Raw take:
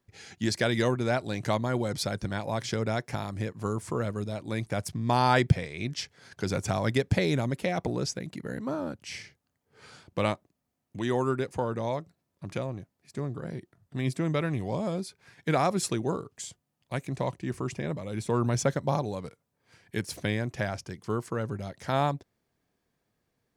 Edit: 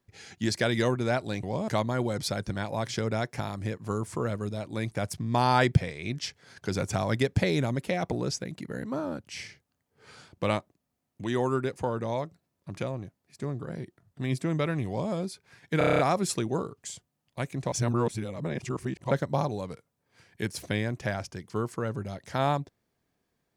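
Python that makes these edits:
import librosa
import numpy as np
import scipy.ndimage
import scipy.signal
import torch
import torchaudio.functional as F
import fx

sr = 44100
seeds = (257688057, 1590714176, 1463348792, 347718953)

y = fx.edit(x, sr, fx.duplicate(start_s=14.62, length_s=0.25, to_s=1.43),
    fx.stutter(start_s=15.53, slice_s=0.03, count=8),
    fx.reverse_span(start_s=17.26, length_s=1.39), tone=tone)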